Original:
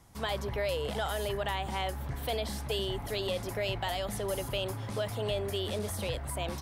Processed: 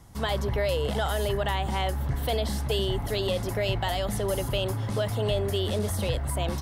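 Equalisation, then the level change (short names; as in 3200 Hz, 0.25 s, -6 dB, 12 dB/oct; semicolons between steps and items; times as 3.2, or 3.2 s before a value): low shelf 260 Hz +5.5 dB; notch 2400 Hz, Q 15; +4.0 dB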